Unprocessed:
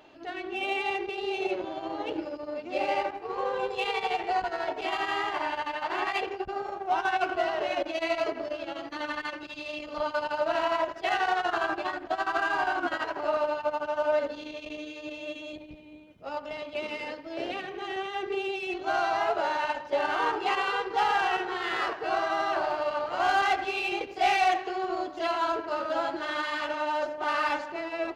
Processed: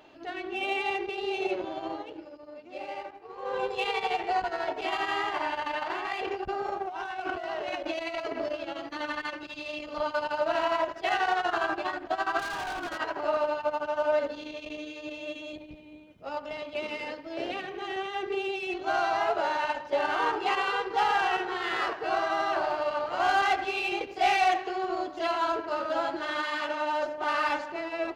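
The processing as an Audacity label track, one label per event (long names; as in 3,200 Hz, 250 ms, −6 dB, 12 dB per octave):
1.920000	3.550000	duck −10 dB, fades 0.14 s
5.600000	8.550000	compressor whose output falls as the input rises −33 dBFS
12.390000	12.980000	hard clipping −32 dBFS
26.390000	26.930000	high-pass filter 130 Hz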